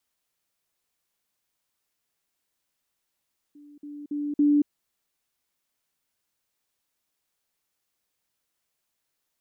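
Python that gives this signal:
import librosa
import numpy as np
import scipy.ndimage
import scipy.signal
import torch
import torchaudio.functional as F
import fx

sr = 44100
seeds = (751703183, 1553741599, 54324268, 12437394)

y = fx.level_ladder(sr, hz=292.0, from_db=-46.5, step_db=10.0, steps=4, dwell_s=0.23, gap_s=0.05)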